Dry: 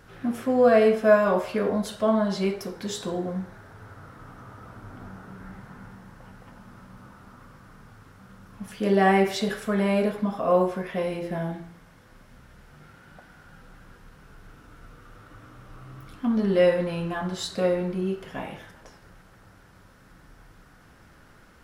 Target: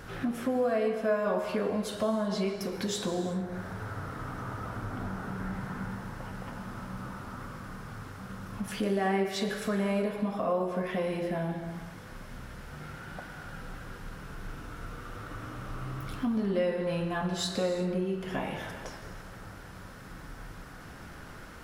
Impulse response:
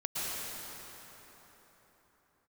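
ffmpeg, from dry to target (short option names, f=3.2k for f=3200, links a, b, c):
-filter_complex "[0:a]acompressor=threshold=-39dB:ratio=3,asplit=2[a][b];[1:a]atrim=start_sample=2205,afade=t=out:st=0.43:d=0.01,atrim=end_sample=19404[c];[b][c]afir=irnorm=-1:irlink=0,volume=-11.5dB[d];[a][d]amix=inputs=2:normalize=0,volume=5.5dB"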